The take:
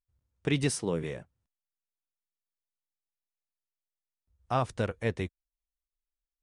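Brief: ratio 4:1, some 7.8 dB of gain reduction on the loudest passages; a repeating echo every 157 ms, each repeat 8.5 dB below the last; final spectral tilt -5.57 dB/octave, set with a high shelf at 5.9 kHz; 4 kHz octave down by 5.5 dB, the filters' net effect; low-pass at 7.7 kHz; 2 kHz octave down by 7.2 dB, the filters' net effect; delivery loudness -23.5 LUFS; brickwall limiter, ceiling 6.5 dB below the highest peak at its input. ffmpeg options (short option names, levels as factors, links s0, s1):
-af "lowpass=7700,equalizer=f=2000:t=o:g=-8,equalizer=f=4000:t=o:g=-8,highshelf=f=5900:g=9,acompressor=threshold=0.0224:ratio=4,alimiter=level_in=1.78:limit=0.0631:level=0:latency=1,volume=0.562,aecho=1:1:157|314|471|628:0.376|0.143|0.0543|0.0206,volume=7.94"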